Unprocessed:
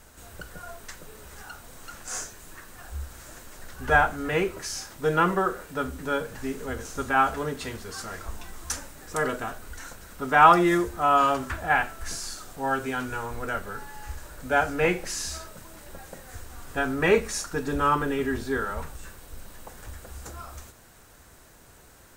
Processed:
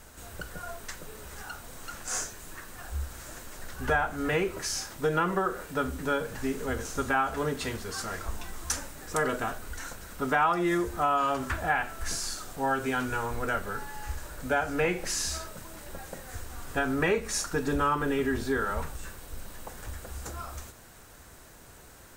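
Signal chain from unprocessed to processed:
downward compressor 4 to 1, threshold −25 dBFS, peak gain reduction 13 dB
level +1.5 dB

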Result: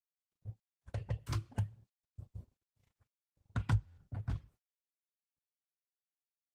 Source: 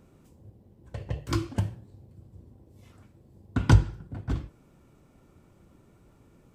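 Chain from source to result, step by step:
reverb reduction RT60 0.85 s
noise gate −50 dBFS, range −59 dB
parametric band 310 Hz −11.5 dB 1 octave
downward compressor 2.5 to 1, threshold −46 dBFS, peak gain reduction 22 dB
dynamic equaliser 110 Hz, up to +7 dB, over −58 dBFS, Q 4.5
buffer that repeats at 0:03.86, samples 512, times 9
level +4 dB
Opus 20 kbit/s 48,000 Hz

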